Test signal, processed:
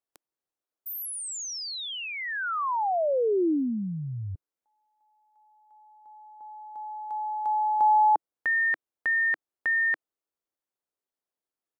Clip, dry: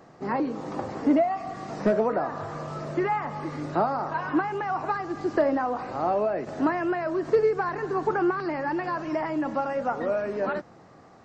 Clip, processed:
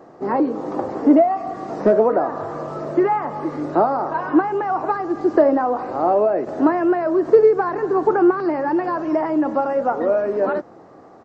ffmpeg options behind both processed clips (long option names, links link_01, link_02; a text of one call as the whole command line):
ffmpeg -i in.wav -af "firequalizer=gain_entry='entry(150,0);entry(320,10);entry(2300,-2)':delay=0.05:min_phase=1" out.wav